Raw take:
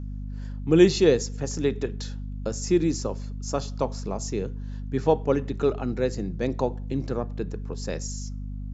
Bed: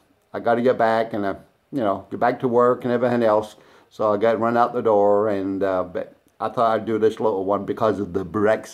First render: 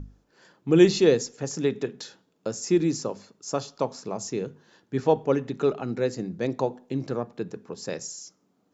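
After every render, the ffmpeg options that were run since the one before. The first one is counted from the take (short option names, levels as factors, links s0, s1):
-af "bandreject=f=50:t=h:w=6,bandreject=f=100:t=h:w=6,bandreject=f=150:t=h:w=6,bandreject=f=200:t=h:w=6,bandreject=f=250:t=h:w=6"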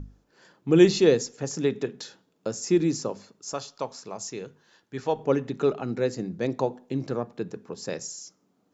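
-filter_complex "[0:a]asettb=1/sr,asplit=3[s0][s1][s2];[s0]atrim=end=3.534[s3];[s1]atrim=start=3.53:end=5.19,asetpts=PTS-STARTPTS,afade=t=in:d=0.004:c=qsin,afade=t=out:st=1.656:d=0.004:c=qsin,equalizer=f=200:w=0.32:g=-8.5[s4];[s2]atrim=start=5.186[s5];[s3][s4]acrossfade=d=0.004:c1=hsin:c2=qsin[s6];[s6][s5]acrossfade=d=0.004:c1=qsin:c2=hsin"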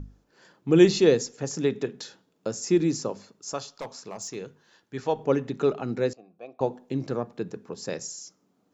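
-filter_complex "[0:a]asplit=3[s0][s1][s2];[s0]afade=t=out:st=3.7:d=0.02[s3];[s1]asoftclip=type=hard:threshold=0.0316,afade=t=in:st=3.7:d=0.02,afade=t=out:st=4.34:d=0.02[s4];[s2]afade=t=in:st=4.34:d=0.02[s5];[s3][s4][s5]amix=inputs=3:normalize=0,asettb=1/sr,asplit=3[s6][s7][s8];[s6]atrim=end=6.134[s9];[s7]atrim=start=6.13:end=6.61,asetpts=PTS-STARTPTS,afade=t=in:d=0.004:c=qsin,afade=t=out:st=0.476:d=0.004:c=qsin,asplit=3[s10][s11][s12];[s10]bandpass=f=730:t=q:w=8,volume=1[s13];[s11]bandpass=f=1090:t=q:w=8,volume=0.501[s14];[s12]bandpass=f=2440:t=q:w=8,volume=0.355[s15];[s13][s14][s15]amix=inputs=3:normalize=0[s16];[s8]atrim=start=6.606[s17];[s9][s16]acrossfade=d=0.004:c1=hsin:c2=qsin[s18];[s18][s17]acrossfade=d=0.004:c1=qsin:c2=hsin"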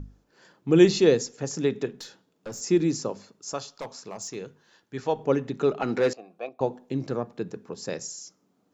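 -filter_complex "[0:a]asettb=1/sr,asplit=3[s0][s1][s2];[s0]atrim=end=1.904[s3];[s1]atrim=start=1.9:end=2.61,asetpts=PTS-STARTPTS,afade=t=in:d=0.004:c=qsin,afade=t=out:st=0.706:d=0.004:c=qsin,aeval=exprs='(tanh(39.8*val(0)+0.2)-tanh(0.2))/39.8':c=same[s4];[s2]atrim=start=2.606[s5];[s3][s4]acrossfade=d=0.004:c1=hsin:c2=qsin[s6];[s6][s5]acrossfade=d=0.004:c1=qsin:c2=hsin,asettb=1/sr,asplit=3[s7][s8][s9];[s7]atrim=end=5.804[s10];[s8]atrim=start=5.8:end=6.49,asetpts=PTS-STARTPTS,afade=t=in:d=0.004:c=qsin,afade=t=out:st=0.686:d=0.004:c=qsin,asplit=2[s11][s12];[s12]highpass=f=720:p=1,volume=7.08,asoftclip=type=tanh:threshold=0.224[s13];[s11][s13]amix=inputs=2:normalize=0,lowpass=f=4000:p=1,volume=0.501[s14];[s9]atrim=start=6.486[s15];[s10][s14]acrossfade=d=0.004:c1=hsin:c2=qsin[s16];[s16][s15]acrossfade=d=0.004:c1=qsin:c2=hsin"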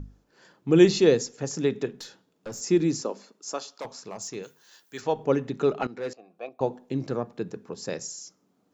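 -filter_complex "[0:a]asettb=1/sr,asplit=3[s0][s1][s2];[s0]atrim=end=3.014[s3];[s1]atrim=start=3.01:end=3.85,asetpts=PTS-STARTPTS,afade=t=in:d=0.004:c=qsin,afade=t=out:st=0.836:d=0.004:c=qsin,highpass=f=220:w=0.5412,highpass=f=220:w=1.3066[s4];[s2]atrim=start=3.846[s5];[s3][s4]acrossfade=d=0.004:c1=hsin:c2=qsin[s6];[s6][s5]acrossfade=d=0.004:c1=qsin:c2=hsin,asplit=3[s7][s8][s9];[s7]afade=t=out:st=4.42:d=0.02[s10];[s8]aemphasis=mode=production:type=riaa,afade=t=in:st=4.42:d=0.02,afade=t=out:st=5:d=0.02[s11];[s9]afade=t=in:st=5:d=0.02[s12];[s10][s11][s12]amix=inputs=3:normalize=0,asplit=2[s13][s14];[s13]atrim=end=5.87,asetpts=PTS-STARTPTS,afade=t=out:st=5.866:d=0.004:c=hsin:silence=0.133352[s15];[s14]atrim=start=5.87,asetpts=PTS-STARTPTS,afade=t=in:d=0.8:silence=0.133352[s16];[s15][s16]concat=n=2:v=0:a=1"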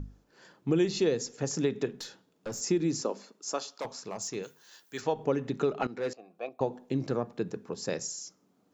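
-af "acompressor=threshold=0.0631:ratio=4"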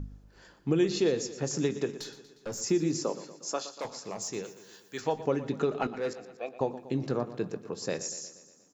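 -filter_complex "[0:a]asplit=2[s0][s1];[s1]adelay=20,volume=0.2[s2];[s0][s2]amix=inputs=2:normalize=0,aecho=1:1:119|238|357|476|595|714:0.188|0.109|0.0634|0.0368|0.0213|0.0124"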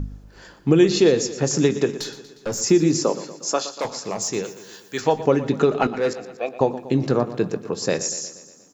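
-af "volume=3.35"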